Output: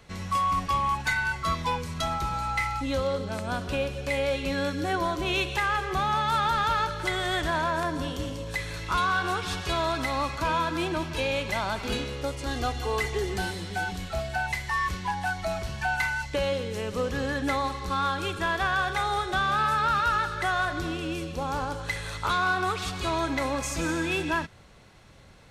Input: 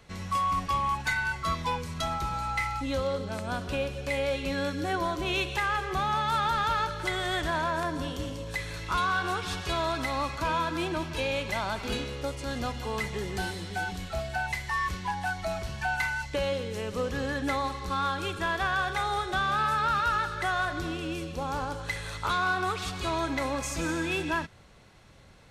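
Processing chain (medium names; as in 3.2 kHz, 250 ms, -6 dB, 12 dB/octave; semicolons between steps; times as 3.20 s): 12.46–13.34 s: comb 2.6 ms, depth 71%; trim +2 dB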